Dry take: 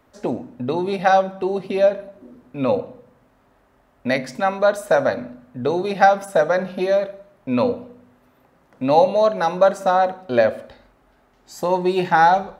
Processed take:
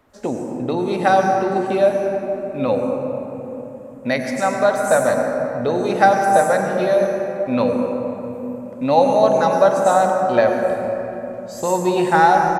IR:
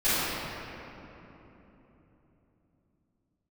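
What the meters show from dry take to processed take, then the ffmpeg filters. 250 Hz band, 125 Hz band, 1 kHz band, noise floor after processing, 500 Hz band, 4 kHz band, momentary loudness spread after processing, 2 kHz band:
+3.5 dB, +3.0 dB, +2.0 dB, -34 dBFS, +2.5 dB, +0.5 dB, 13 LU, +1.5 dB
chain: -filter_complex "[0:a]aresample=32000,aresample=44100,asplit=2[s0][s1];[s1]highshelf=f=5400:t=q:w=3:g=12.5[s2];[1:a]atrim=start_sample=2205,adelay=89[s3];[s2][s3]afir=irnorm=-1:irlink=0,volume=0.126[s4];[s0][s4]amix=inputs=2:normalize=0"

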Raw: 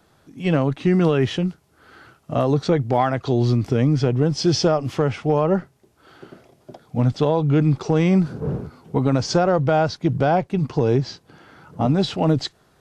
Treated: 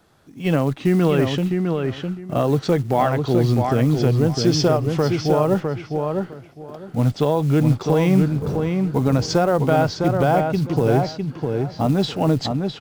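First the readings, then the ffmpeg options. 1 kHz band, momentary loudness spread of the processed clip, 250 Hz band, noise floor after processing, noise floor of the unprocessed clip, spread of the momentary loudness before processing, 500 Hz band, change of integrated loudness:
+1.0 dB, 8 LU, +1.0 dB, -43 dBFS, -59 dBFS, 7 LU, +1.5 dB, +0.5 dB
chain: -filter_complex "[0:a]acrusher=bits=7:mode=log:mix=0:aa=0.000001,asplit=2[s0][s1];[s1]adelay=656,lowpass=f=3300:p=1,volume=0.596,asplit=2[s2][s3];[s3]adelay=656,lowpass=f=3300:p=1,volume=0.21,asplit=2[s4][s5];[s5]adelay=656,lowpass=f=3300:p=1,volume=0.21[s6];[s0][s2][s4][s6]amix=inputs=4:normalize=0"

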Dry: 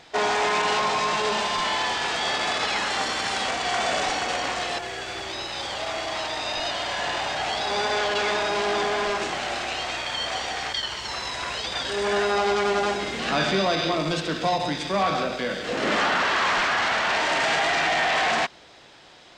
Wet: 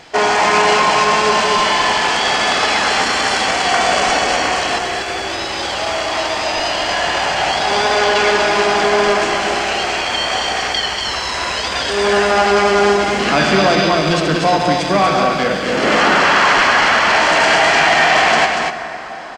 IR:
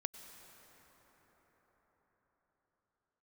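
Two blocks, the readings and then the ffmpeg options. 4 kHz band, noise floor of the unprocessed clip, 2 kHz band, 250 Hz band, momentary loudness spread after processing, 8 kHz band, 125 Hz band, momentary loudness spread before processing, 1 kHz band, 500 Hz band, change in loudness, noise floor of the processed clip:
+9.0 dB, -49 dBFS, +10.5 dB, +11.0 dB, 8 LU, +10.5 dB, +11.0 dB, 7 LU, +10.5 dB, +10.5 dB, +10.5 dB, -23 dBFS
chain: -filter_complex "[0:a]bandreject=f=3700:w=8.4,aecho=1:1:238:0.596,asplit=2[s0][s1];[1:a]atrim=start_sample=2205[s2];[s1][s2]afir=irnorm=-1:irlink=0,volume=1.78[s3];[s0][s3]amix=inputs=2:normalize=0,volume=1.19"

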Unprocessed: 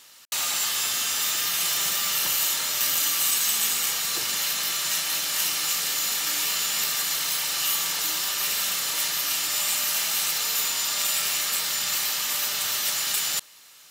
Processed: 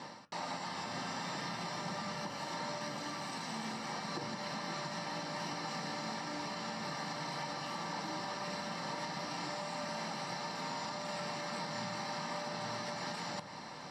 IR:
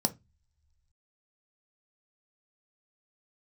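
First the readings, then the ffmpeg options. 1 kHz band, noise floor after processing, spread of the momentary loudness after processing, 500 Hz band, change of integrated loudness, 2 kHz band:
-2.5 dB, -47 dBFS, 1 LU, +1.5 dB, -17.0 dB, -12.0 dB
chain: -filter_complex "[0:a]areverse,acompressor=threshold=0.01:ratio=6,areverse,lowpass=1800[s0];[1:a]atrim=start_sample=2205[s1];[s0][s1]afir=irnorm=-1:irlink=0,alimiter=level_in=5.01:limit=0.0631:level=0:latency=1:release=141,volume=0.2,volume=2.51"

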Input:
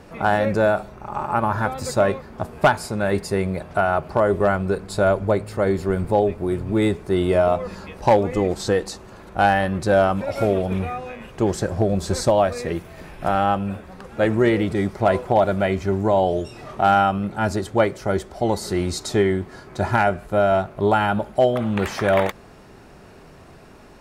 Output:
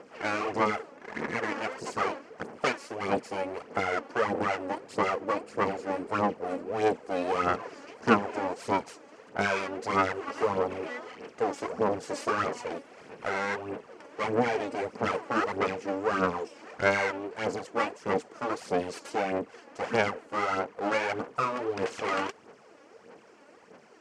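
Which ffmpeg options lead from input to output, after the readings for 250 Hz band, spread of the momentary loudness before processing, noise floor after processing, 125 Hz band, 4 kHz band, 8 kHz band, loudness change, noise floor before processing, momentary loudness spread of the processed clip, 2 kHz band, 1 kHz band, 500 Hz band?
-11.0 dB, 9 LU, -55 dBFS, -17.5 dB, -7.0 dB, -10.0 dB, -9.5 dB, -45 dBFS, 10 LU, -5.0 dB, -8.0 dB, -10.5 dB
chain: -af "aeval=exprs='abs(val(0))':c=same,aphaser=in_gain=1:out_gain=1:delay=3.6:decay=0.56:speed=1.6:type=sinusoidal,highpass=230,equalizer=f=230:t=q:w=4:g=4,equalizer=f=460:t=q:w=4:g=9,equalizer=f=3700:t=q:w=4:g=-9,lowpass=f=7900:w=0.5412,lowpass=f=7900:w=1.3066,volume=0.422"

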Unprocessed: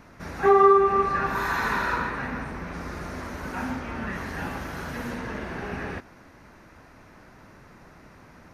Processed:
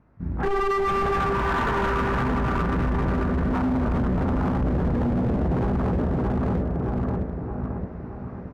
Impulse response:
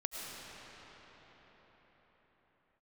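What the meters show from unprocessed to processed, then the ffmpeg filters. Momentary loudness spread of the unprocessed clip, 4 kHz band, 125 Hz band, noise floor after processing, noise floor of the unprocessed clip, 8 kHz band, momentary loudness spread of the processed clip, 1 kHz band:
18 LU, +1.0 dB, +13.5 dB, -36 dBFS, -51 dBFS, no reading, 8 LU, -1.5 dB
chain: -filter_complex "[0:a]highpass=f=85:p=1,asplit=2[s0][s1];[s1]adelay=16,volume=0.376[s2];[s0][s2]amix=inputs=2:normalize=0,afwtdn=0.0316,equalizer=f=940:t=o:w=1.2:g=3,aecho=1:1:621|1242|1863|2484|3105|3726:0.335|0.174|0.0906|0.0471|0.0245|0.0127,asplit=2[s3][s4];[1:a]atrim=start_sample=2205[s5];[s4][s5]afir=irnorm=-1:irlink=0,volume=0.141[s6];[s3][s6]amix=inputs=2:normalize=0,asoftclip=type=tanh:threshold=0.126,dynaudnorm=f=120:g=17:m=5.62,lowpass=f=2300:p=1,aemphasis=mode=reproduction:type=riaa,alimiter=limit=0.188:level=0:latency=1:release=23,volume=10,asoftclip=hard,volume=0.1"

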